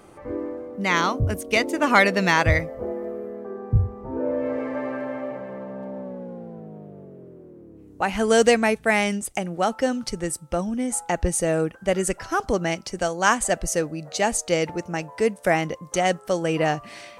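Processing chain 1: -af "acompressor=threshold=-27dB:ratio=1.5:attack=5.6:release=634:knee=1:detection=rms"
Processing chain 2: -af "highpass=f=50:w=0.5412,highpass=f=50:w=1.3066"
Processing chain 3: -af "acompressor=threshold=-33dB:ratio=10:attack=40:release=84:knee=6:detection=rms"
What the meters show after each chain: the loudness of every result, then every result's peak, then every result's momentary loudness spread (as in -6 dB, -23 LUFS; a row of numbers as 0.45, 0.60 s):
-28.5, -23.5, -35.0 LUFS; -9.5, -3.0, -16.0 dBFS; 11, 16, 5 LU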